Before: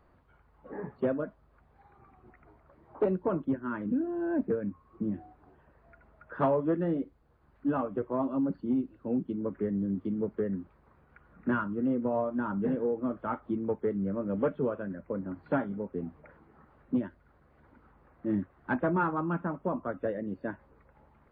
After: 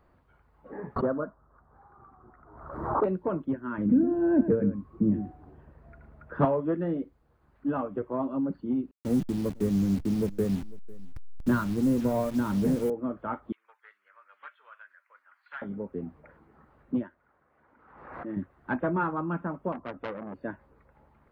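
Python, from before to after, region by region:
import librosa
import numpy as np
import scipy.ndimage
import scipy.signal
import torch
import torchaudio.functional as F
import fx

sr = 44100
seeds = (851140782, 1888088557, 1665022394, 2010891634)

y = fx.chain(x, sr, fx.high_shelf_res(hz=1800.0, db=-11.5, q=3.0),
    fx.pre_swell(db_per_s=58.0), at=(0.96, 3.04))
y = fx.chain(y, sr, fx.low_shelf(hz=420.0, db=10.5),
    fx.echo_single(ms=111, db=-10.5), at=(3.78, 6.45))
y = fx.chain(y, sr, fx.delta_hold(step_db=-39.5),
    fx.low_shelf(hz=200.0, db=12.0),
    fx.echo_single(ms=499, db=-22.0), at=(8.91, 12.9))
y = fx.chain(y, sr, fx.highpass(hz=1400.0, slope=24),
    fx.doppler_dist(depth_ms=0.13), at=(13.52, 15.62))
y = fx.chain(y, sr, fx.lowpass(hz=1500.0, slope=12),
    fx.tilt_eq(slope=4.0),
    fx.pre_swell(db_per_s=55.0), at=(17.03, 18.37))
y = fx.chain(y, sr, fx.high_shelf(hz=2200.0, db=-10.5),
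    fx.transformer_sat(knee_hz=1400.0), at=(19.72, 20.34))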